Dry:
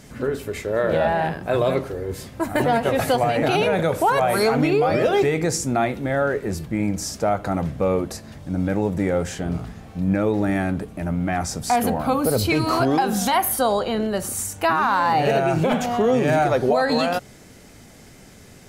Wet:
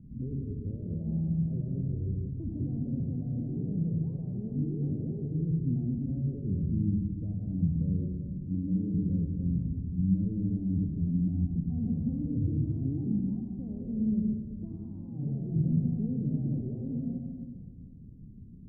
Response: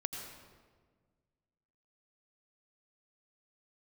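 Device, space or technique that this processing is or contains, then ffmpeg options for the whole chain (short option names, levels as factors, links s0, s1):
club heard from the street: -filter_complex "[0:a]asettb=1/sr,asplit=3[s0][s1][s2];[s0]atrim=end=8.454[s3];[s1]atrim=start=8.45:end=8.94,asetpts=PTS-STARTPTS,afade=t=in:d=0.004:c=qsin,afade=t=out:st=0.486:d=0.004:c=qsin,highpass=200[s4];[s2]atrim=start=8.936[s5];[s3][s4]acrossfade=d=0.004:c1=hsin:c2=qsin[s6];[s6][s5]acrossfade=d=0.004:c1=qsin:c2=hsin,alimiter=limit=0.133:level=0:latency=1:release=20,lowpass=f=230:w=0.5412,lowpass=f=230:w=1.3066[s7];[1:a]atrim=start_sample=2205[s8];[s7][s8]afir=irnorm=-1:irlink=0"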